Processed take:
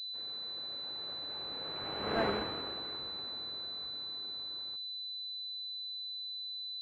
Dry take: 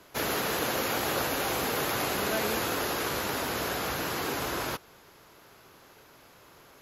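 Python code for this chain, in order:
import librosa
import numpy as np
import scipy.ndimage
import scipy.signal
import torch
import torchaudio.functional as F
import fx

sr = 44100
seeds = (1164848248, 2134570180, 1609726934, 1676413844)

y = fx.doppler_pass(x, sr, speed_mps=24, closest_m=2.3, pass_at_s=2.23)
y = fx.pwm(y, sr, carrier_hz=4000.0)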